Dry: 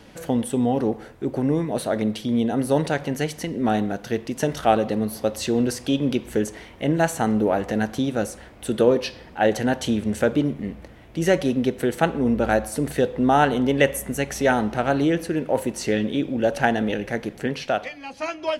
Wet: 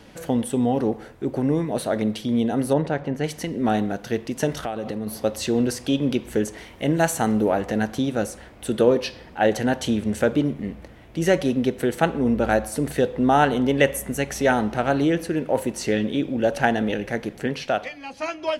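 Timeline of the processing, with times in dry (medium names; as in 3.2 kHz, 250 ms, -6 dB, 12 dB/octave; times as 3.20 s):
2.73–3.24 s: low-pass 1.3 kHz 6 dB/octave
4.54–5.07 s: compression 8:1, threshold -24 dBFS
6.58–7.52 s: treble shelf 5 kHz +6 dB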